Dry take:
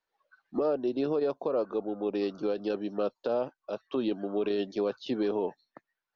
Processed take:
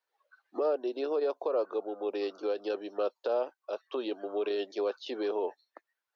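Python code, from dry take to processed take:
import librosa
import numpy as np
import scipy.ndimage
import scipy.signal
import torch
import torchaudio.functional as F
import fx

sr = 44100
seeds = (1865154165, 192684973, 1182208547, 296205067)

y = scipy.signal.sosfilt(scipy.signal.butter(4, 370.0, 'highpass', fs=sr, output='sos'), x)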